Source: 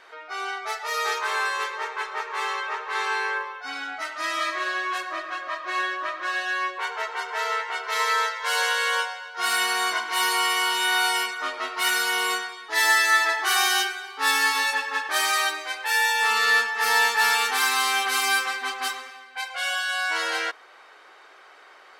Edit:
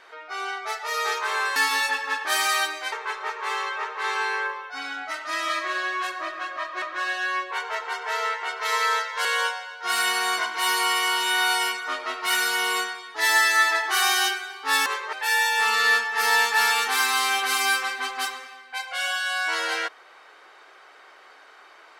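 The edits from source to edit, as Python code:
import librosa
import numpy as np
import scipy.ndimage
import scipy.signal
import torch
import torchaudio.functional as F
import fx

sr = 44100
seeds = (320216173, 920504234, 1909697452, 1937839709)

y = fx.edit(x, sr, fx.swap(start_s=1.56, length_s=0.27, other_s=14.4, other_length_s=1.36),
    fx.cut(start_s=5.73, length_s=0.36),
    fx.cut(start_s=8.52, length_s=0.27), tone=tone)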